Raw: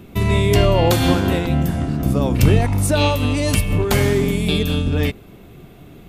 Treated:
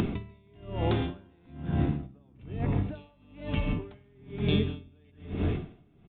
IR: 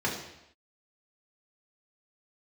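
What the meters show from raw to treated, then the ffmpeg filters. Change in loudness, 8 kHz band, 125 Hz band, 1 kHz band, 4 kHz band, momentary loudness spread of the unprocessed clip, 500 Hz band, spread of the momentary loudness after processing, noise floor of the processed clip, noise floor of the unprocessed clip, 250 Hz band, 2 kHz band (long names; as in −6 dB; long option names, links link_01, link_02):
−14.0 dB, below −35 dB, −14.0 dB, −17.0 dB, −17.5 dB, 5 LU, −17.0 dB, 19 LU, −60 dBFS, −42 dBFS, −13.0 dB, −18.0 dB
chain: -filter_complex "[0:a]acompressor=mode=upward:threshold=-17dB:ratio=2.5,bandreject=frequency=530:width=12,asplit=2[link_01][link_02];[1:a]atrim=start_sample=2205,adelay=141[link_03];[link_02][link_03]afir=irnorm=-1:irlink=0,volume=-23dB[link_04];[link_01][link_04]amix=inputs=2:normalize=0,acompressor=threshold=-23dB:ratio=6,lowshelf=frequency=300:gain=11,asplit=2[link_05][link_06];[link_06]adelay=472.3,volume=-8dB,highshelf=frequency=4000:gain=-10.6[link_07];[link_05][link_07]amix=inputs=2:normalize=0,aresample=8000,aresample=44100,lowshelf=frequency=140:gain=-9,aeval=exprs='val(0)*pow(10,-35*(0.5-0.5*cos(2*PI*1.1*n/s))/20)':channel_layout=same,volume=-2.5dB"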